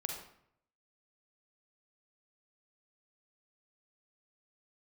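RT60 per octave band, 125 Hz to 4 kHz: 0.85, 0.75, 0.70, 0.65, 0.60, 0.50 s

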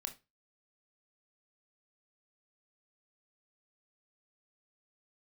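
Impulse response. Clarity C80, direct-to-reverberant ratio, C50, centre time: 22.5 dB, 5.0 dB, 15.0 dB, 10 ms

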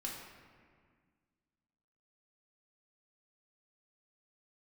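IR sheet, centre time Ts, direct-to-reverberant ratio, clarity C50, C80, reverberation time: 69 ms, -3.5 dB, 2.0 dB, 4.0 dB, 1.8 s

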